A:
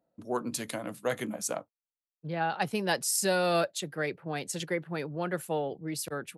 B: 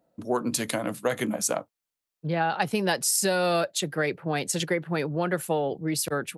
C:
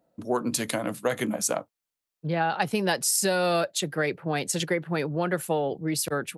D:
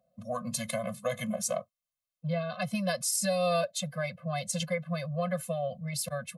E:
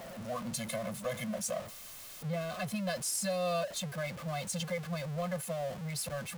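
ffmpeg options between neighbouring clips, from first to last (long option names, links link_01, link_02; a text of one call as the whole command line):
ffmpeg -i in.wav -af "acompressor=threshold=-29dB:ratio=6,volume=8dB" out.wav
ffmpeg -i in.wav -af anull out.wav
ffmpeg -i in.wav -af "bandreject=frequency=1600:width=8.1,afftfilt=real='re*eq(mod(floor(b*sr/1024/250),2),0)':imag='im*eq(mod(floor(b*sr/1024/250),2),0)':win_size=1024:overlap=0.75,volume=-2dB" out.wav
ffmpeg -i in.wav -af "aeval=exprs='val(0)+0.5*0.0224*sgn(val(0))':channel_layout=same,volume=-6.5dB" out.wav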